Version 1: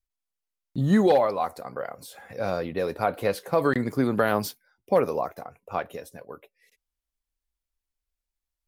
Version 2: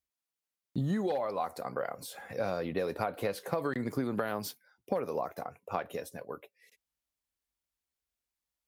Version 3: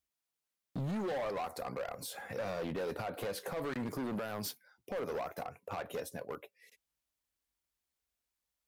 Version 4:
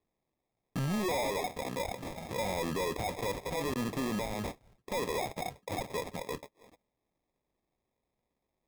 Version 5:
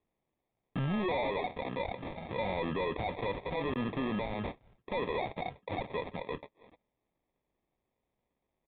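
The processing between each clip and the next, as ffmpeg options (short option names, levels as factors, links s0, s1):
-af "highpass=87,acompressor=threshold=0.0398:ratio=12"
-af "alimiter=level_in=1.06:limit=0.0631:level=0:latency=1:release=67,volume=0.944,volume=53.1,asoftclip=hard,volume=0.0188,volume=1.12"
-af "acrusher=samples=30:mix=1:aa=0.000001,volume=1.58"
-af "aresample=8000,aresample=44100"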